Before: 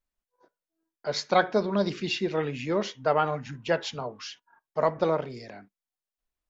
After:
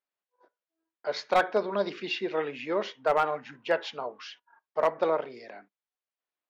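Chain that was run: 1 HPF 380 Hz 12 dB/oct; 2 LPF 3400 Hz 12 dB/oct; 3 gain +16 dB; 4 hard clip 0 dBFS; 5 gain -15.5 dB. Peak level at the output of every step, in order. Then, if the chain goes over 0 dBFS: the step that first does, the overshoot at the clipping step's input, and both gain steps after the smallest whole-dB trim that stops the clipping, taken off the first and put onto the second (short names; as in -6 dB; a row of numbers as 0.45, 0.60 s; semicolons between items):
-9.0, -9.5, +6.5, 0.0, -15.5 dBFS; step 3, 6.5 dB; step 3 +9 dB, step 5 -8.5 dB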